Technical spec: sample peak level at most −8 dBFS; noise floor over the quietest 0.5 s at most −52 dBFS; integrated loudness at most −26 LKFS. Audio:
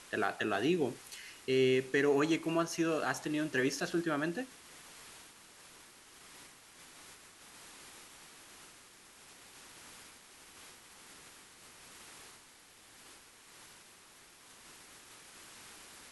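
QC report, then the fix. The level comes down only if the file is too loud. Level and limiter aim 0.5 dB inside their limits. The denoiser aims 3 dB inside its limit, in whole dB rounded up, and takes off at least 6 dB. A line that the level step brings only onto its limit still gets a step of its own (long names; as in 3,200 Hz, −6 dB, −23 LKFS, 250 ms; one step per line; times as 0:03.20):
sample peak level −18.0 dBFS: in spec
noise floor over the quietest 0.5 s −59 dBFS: in spec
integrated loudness −33.0 LKFS: in spec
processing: no processing needed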